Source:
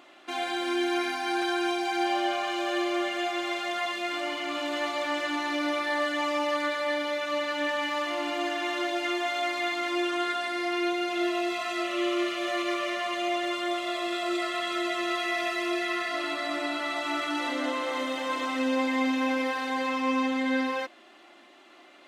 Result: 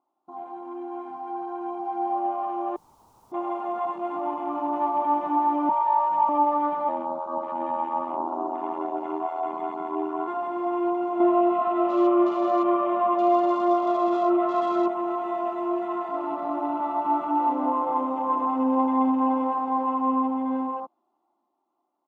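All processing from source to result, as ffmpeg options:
-filter_complex "[0:a]asettb=1/sr,asplit=3[s0][s1][s2];[s0]atrim=end=2.764[s3];[s1]atrim=start=2.76:end=3.32,asetpts=PTS-STARTPTS,afade=t=in:d=0.004:c=qsin,afade=t=out:st=0.556:d=0.004:c=qsin,highpass=80,aeval=exprs='(mod(44.7*val(0)+1,2)-1)/44.7':c=same[s4];[s2]atrim=start=3.316[s5];[s3][s4]acrossfade=d=0.004:c1=hsin:c2=qsin[s6];[s6][s5]acrossfade=d=0.004:c1=qsin:c2=hsin,asettb=1/sr,asplit=3[s7][s8][s9];[s7]atrim=end=5.694[s10];[s8]atrim=start=5.69:end=6.29,asetpts=PTS-STARTPTS,afade=t=in:d=0.004:c=qsin,afade=t=out:st=0.596:d=0.004:c=qsin,highpass=700,equalizer=f=1500:t=o:w=0.79:g=-3.5,aeval=exprs='val(0)+0.02*sin(2*PI*930*n/s)':c=same[s11];[s9]atrim=start=6.286[s12];[s10][s11]acrossfade=d=0.004:c1=hsin:c2=qsin[s13];[s13][s12]acrossfade=d=0.004:c1=qsin:c2=hsin,asettb=1/sr,asplit=3[s14][s15][s16];[s14]atrim=end=6.884[s17];[s15]atrim=start=6.88:end=10.28,asetpts=PTS-STARTPTS,afade=t=in:d=0.004:c=qsin,afade=t=out:st=3.396:d=0.004:c=qsin,aeval=exprs='val(0)*sin(2*PI*41*n/s)':c=same,bandreject=f=50:t=h:w=6,bandreject=f=100:t=h:w=6,bandreject=f=150:t=h:w=6,bandreject=f=200:t=h:w=6,bandreject=f=250:t=h:w=6,bandreject=f=300:t=h:w=6,bandreject=f=350:t=h:w=6[s18];[s16]atrim=start=10.276[s19];[s17][s18]acrossfade=d=0.004:c1=hsin:c2=qsin[s20];[s20][s19]acrossfade=d=0.004:c1=qsin:c2=hsin,asettb=1/sr,asplit=3[s21][s22][s23];[s21]atrim=end=11.204[s24];[s22]atrim=start=11.2:end=14.88,asetpts=PTS-STARTPTS,afade=t=in:d=0.004:c=qsin,afade=t=out:st=3.676:d=0.004:c=qsin,lowpass=f=4000:w=0.5412,lowpass=f=4000:w=1.3066,acontrast=29[s25];[s23]atrim=start=14.876[s26];[s24][s25]acrossfade=d=0.004:c1=hsin:c2=qsin[s27];[s27][s26]acrossfade=d=0.004:c1=qsin:c2=hsin,afwtdn=0.0224,firequalizer=gain_entry='entry(210,0);entry(590,-6);entry(890,9);entry(1700,-26);entry(5700,-17)':delay=0.05:min_phase=1,dynaudnorm=f=720:g=7:m=3.98,volume=0.501"

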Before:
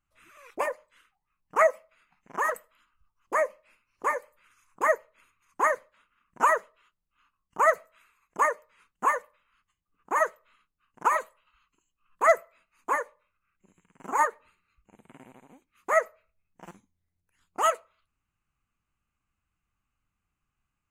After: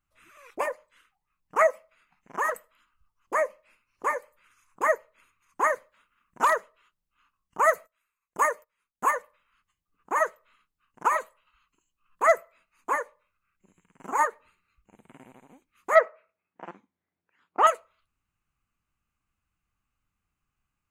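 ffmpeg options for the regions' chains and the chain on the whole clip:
-filter_complex "[0:a]asettb=1/sr,asplit=3[s0][s1][s2];[s0]atrim=end=5.704[s3];[s1]atrim=start=5.7:end=6.56,asetpts=PTS-STARTPTS,afade=t=in:d=0.004:c=qsin,afade=t=out:st=0.856:d=0.004:c=qsin,highshelf=f=11000:g=5,asoftclip=type=hard:threshold=0.188[s4];[s2]atrim=start=6.556[s5];[s3][s4]acrossfade=d=0.004:c1=hsin:c2=qsin[s6];[s6][s5]acrossfade=d=0.004:c1=qsin:c2=hsin,asettb=1/sr,asplit=3[s7][s8][s9];[s7]atrim=end=7.644[s10];[s8]atrim=start=7.64:end=9.11,asetpts=PTS-STARTPTS,afade=t=in:d=0.004:c=qsin,afade=t=out:st=1.466:d=0.004:c=qsin,agate=range=0.126:threshold=0.00126:ratio=16:release=100:detection=peak,highshelf=f=8300:g=10[s11];[s9]atrim=start=9.106[s12];[s10][s11]acrossfade=d=0.004:c1=hsin:c2=qsin[s13];[s13][s12]acrossfade=d=0.004:c1=qsin:c2=hsin,asettb=1/sr,asplit=3[s14][s15][s16];[s14]atrim=end=15.954[s17];[s15]atrim=start=15.95:end=17.67,asetpts=PTS-STARTPTS,afade=t=in:d=0.004:c=qsin,afade=t=out:st=1.716:d=0.004:c=qsin,highpass=290,lowpass=2200,acontrast=70[s18];[s16]atrim=start=17.666[s19];[s17][s18]acrossfade=d=0.004:c1=hsin:c2=qsin[s20];[s20][s19]acrossfade=d=0.004:c1=qsin:c2=hsin"

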